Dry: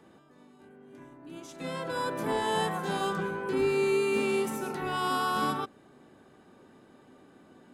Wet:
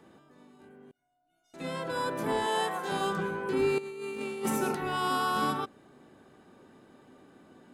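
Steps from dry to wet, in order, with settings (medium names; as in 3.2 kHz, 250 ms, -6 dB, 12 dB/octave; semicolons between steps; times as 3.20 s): 0.91–1.54 s: feedback comb 720 Hz, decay 0.42 s, mix 100%; 2.46–2.92 s: high-pass 330 Hz 12 dB/octave; 3.78–4.75 s: compressor with a negative ratio -32 dBFS, ratio -0.5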